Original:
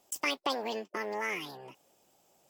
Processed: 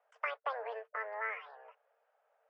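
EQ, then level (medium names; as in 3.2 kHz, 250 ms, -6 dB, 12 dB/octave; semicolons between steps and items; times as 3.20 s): rippled Chebyshev high-pass 440 Hz, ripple 6 dB; resonant low-pass 1.5 kHz, resonance Q 2.1; distance through air 59 m; -2.5 dB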